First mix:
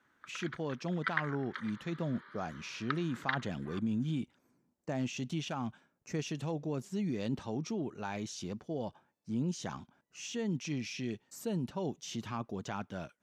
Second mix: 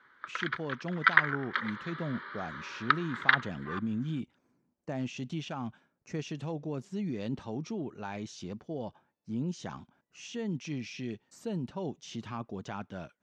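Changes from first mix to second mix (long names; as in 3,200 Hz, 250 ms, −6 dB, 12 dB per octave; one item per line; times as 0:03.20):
background +12.0 dB
master: add high-frequency loss of the air 71 metres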